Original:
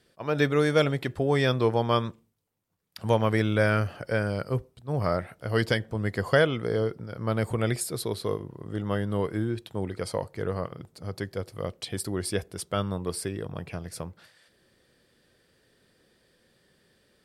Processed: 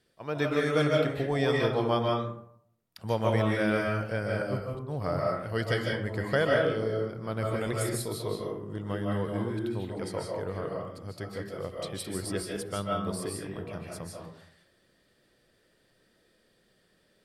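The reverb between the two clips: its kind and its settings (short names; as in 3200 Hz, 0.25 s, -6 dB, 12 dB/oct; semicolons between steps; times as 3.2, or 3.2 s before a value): digital reverb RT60 0.67 s, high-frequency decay 0.5×, pre-delay 0.11 s, DRR -2 dB; gain -6 dB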